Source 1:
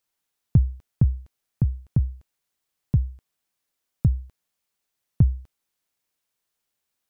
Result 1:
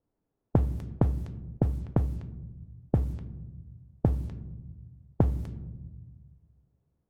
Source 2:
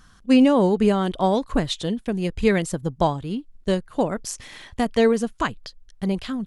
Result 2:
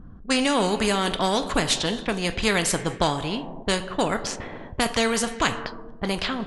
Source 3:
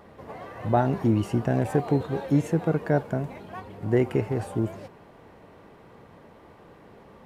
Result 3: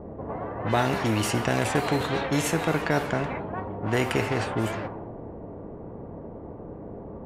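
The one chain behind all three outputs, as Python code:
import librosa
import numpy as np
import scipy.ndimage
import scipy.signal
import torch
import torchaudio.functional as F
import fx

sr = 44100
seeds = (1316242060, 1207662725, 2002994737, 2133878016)

y = fx.rev_double_slope(x, sr, seeds[0], early_s=0.23, late_s=1.8, knee_db=-18, drr_db=9.0)
y = fx.env_lowpass(y, sr, base_hz=380.0, full_db=-20.0)
y = fx.spectral_comp(y, sr, ratio=2.0)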